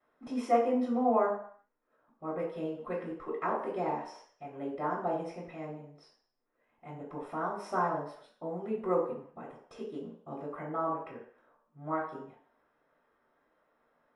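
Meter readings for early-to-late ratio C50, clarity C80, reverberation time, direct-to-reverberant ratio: 5.0 dB, 8.5 dB, 0.60 s, −15.0 dB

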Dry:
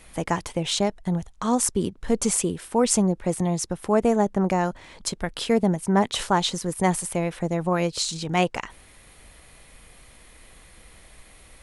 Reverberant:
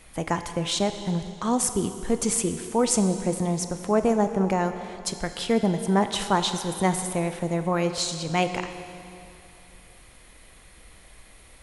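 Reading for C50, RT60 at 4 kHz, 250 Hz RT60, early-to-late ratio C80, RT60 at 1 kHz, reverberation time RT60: 9.0 dB, 2.5 s, 2.7 s, 9.5 dB, 2.7 s, 2.7 s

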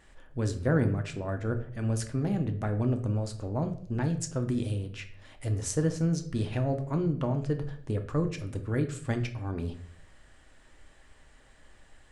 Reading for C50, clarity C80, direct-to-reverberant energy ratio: 12.0 dB, 15.5 dB, 5.5 dB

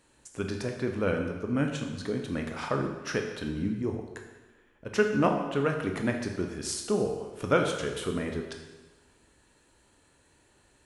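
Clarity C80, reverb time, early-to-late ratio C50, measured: 7.0 dB, 1.2 s, 5.5 dB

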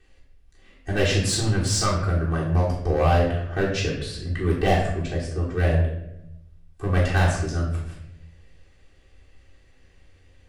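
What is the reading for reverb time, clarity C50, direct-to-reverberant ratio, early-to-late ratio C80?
0.80 s, 4.5 dB, −8.0 dB, 7.5 dB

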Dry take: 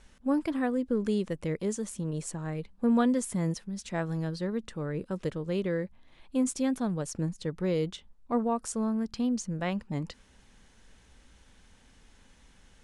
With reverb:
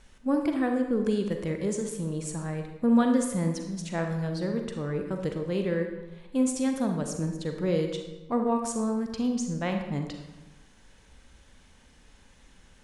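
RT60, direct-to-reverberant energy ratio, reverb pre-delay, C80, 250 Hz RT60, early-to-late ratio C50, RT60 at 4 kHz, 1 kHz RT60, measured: 1.1 s, 3.5 dB, 36 ms, 7.5 dB, 1.2 s, 5.0 dB, 0.80 s, 1.1 s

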